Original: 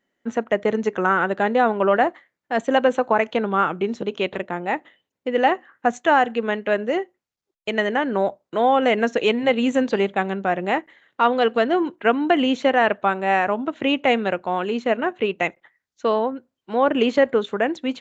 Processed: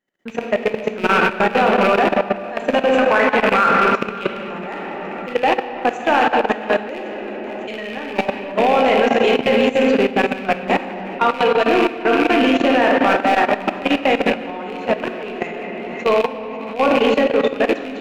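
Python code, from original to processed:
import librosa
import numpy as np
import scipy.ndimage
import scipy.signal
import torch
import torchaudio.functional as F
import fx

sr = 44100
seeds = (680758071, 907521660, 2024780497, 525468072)

p1 = fx.rattle_buzz(x, sr, strikes_db=-31.0, level_db=-13.0)
p2 = fx.peak_eq(p1, sr, hz=1600.0, db=10.5, octaves=0.77, at=(2.91, 3.71))
p3 = p2 + fx.echo_alternate(p2, sr, ms=275, hz=1000.0, feedback_pct=74, wet_db=-11.5, dry=0)
p4 = fx.room_shoebox(p3, sr, seeds[0], volume_m3=130.0, walls='hard', distance_m=0.51)
p5 = 10.0 ** (-16.5 / 20.0) * np.tanh(p4 / 10.0 ** (-16.5 / 20.0))
p6 = p4 + F.gain(torch.from_numpy(p5), -5.5).numpy()
y = fx.level_steps(p6, sr, step_db=14)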